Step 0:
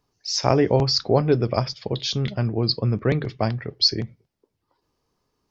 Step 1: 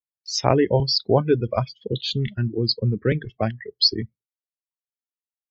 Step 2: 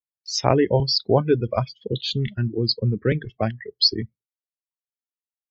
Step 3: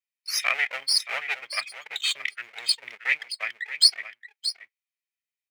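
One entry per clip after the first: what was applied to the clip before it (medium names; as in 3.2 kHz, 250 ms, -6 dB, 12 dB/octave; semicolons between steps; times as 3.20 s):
spectral noise reduction 19 dB; gate with hold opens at -51 dBFS; reverb removal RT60 1 s; trim +1 dB
short-mantissa float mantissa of 8-bit
comb filter that takes the minimum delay 1.6 ms; resonant high-pass 2.2 kHz, resonance Q 5.4; delay 625 ms -11.5 dB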